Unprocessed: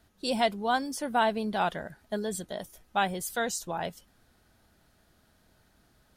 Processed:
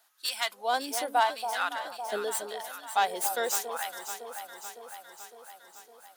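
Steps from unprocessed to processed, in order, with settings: tracing distortion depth 0.044 ms; treble shelf 11 kHz +7 dB; LFO high-pass sine 0.83 Hz 370–1500 Hz; treble shelf 2.7 kHz +9.5 dB; echo whose repeats swap between lows and highs 279 ms, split 900 Hz, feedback 78%, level -7.5 dB; trim -5.5 dB

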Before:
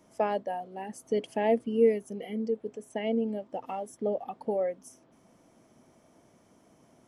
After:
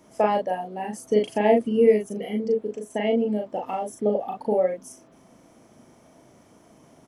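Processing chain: doubling 38 ms -3 dB; trim +5.5 dB

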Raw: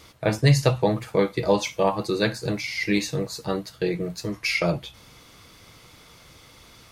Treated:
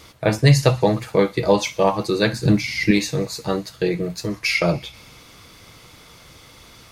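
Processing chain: 2.33–2.91 s: resonant low shelf 360 Hz +7.5 dB, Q 1.5; feedback echo behind a high-pass 63 ms, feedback 84%, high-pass 2.3 kHz, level -23 dB; trim +4 dB

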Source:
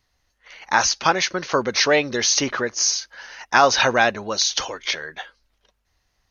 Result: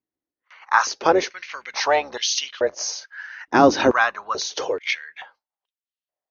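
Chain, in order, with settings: octave divider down 2 oct, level +2 dB; tilt EQ -4 dB/octave; gate with hold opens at -36 dBFS; dynamic bell 6.3 kHz, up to +6 dB, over -40 dBFS, Q 0.77; step-sequenced high-pass 2.3 Hz 310–3100 Hz; trim -3.5 dB

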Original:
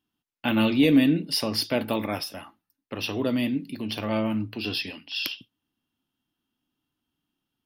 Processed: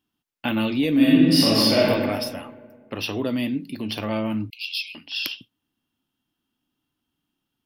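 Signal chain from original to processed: compression 2:1, threshold -25 dBFS, peak gain reduction 6.5 dB; 0.94–1.86 s: reverb throw, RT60 1.7 s, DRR -8 dB; 4.50–4.95 s: brick-wall FIR high-pass 2.1 kHz; trim +2.5 dB

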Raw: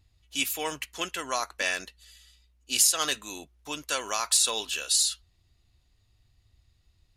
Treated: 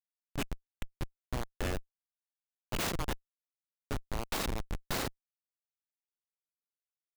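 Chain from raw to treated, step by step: tracing distortion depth 0.12 ms; Schmitt trigger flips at -21.5 dBFS

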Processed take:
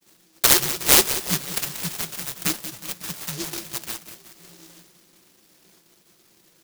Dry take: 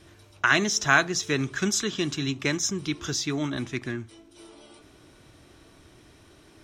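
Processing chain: mistuned SSB -270 Hz 330–3600 Hz; high-pass 190 Hz 24 dB/octave; comb 5.8 ms, depth 48%; on a send: feedback delay 183 ms, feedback 54%, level -11.5 dB; on the sum: expander -54 dBFS; delay time shaken by noise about 5 kHz, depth 0.38 ms; trim +4.5 dB

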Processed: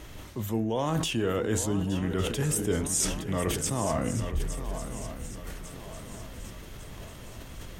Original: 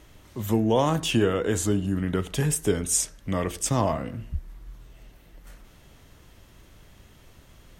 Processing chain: reverse; compression 6:1, threshold -33 dBFS, peak gain reduction 15.5 dB; reverse; shuffle delay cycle 1152 ms, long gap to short 3:1, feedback 47%, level -12 dB; decay stretcher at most 52 dB/s; trim +7 dB

